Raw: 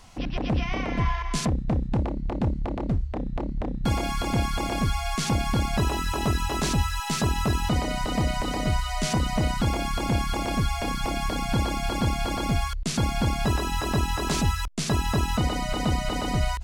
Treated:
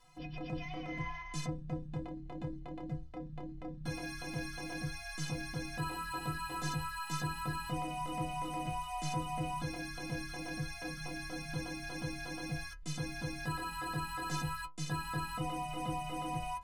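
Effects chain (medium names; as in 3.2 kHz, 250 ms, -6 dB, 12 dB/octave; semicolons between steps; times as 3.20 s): inharmonic resonator 150 Hz, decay 0.33 s, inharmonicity 0.03; trim -1.5 dB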